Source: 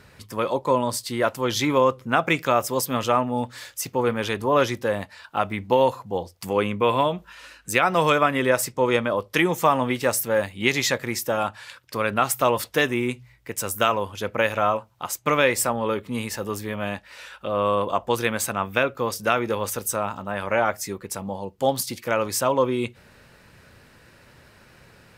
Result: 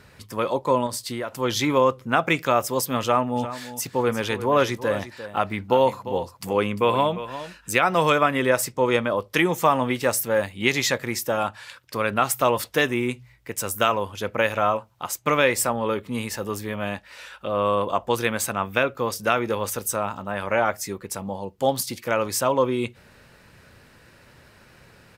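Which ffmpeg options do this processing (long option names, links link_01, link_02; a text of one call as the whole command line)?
ffmpeg -i in.wav -filter_complex "[0:a]asettb=1/sr,asplit=3[link_01][link_02][link_03];[link_01]atrim=end=0.864[link_04];[link_02]atrim=start=0.86:end=1.36,asetpts=PTS-STARTPTS,afade=type=in:duration=0.004:curve=qsin,afade=type=out:start_time=0.496:duration=0.004:curve=qsin,acompressor=threshold=-25dB:ratio=6:attack=3.2:release=140:knee=1:detection=peak[link_05];[link_03]atrim=start=1.356[link_06];[link_04][link_05]acrossfade=duration=0.004:curve1=hsin:curve2=qsin[link_07];[link_07][link_06]acrossfade=duration=0.004:curve1=qsin:curve2=hsin,asplit=3[link_08][link_09][link_10];[link_08]afade=type=out:start_time=3.35:duration=0.02[link_11];[link_09]aecho=1:1:349:0.224,afade=type=in:start_time=3.35:duration=0.02,afade=type=out:start_time=7.73:duration=0.02[link_12];[link_10]afade=type=in:start_time=7.73:duration=0.02[link_13];[link_11][link_12][link_13]amix=inputs=3:normalize=0" out.wav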